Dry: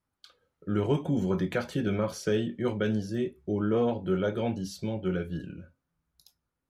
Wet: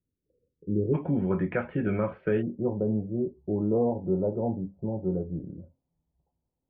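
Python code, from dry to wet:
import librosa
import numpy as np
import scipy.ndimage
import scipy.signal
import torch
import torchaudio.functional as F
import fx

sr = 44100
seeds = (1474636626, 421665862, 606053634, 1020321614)

y = fx.steep_lowpass(x, sr, hz=fx.steps((0.0, 500.0), (0.93, 2500.0), (2.41, 920.0)), slope=48)
y = y * librosa.db_to_amplitude(1.0)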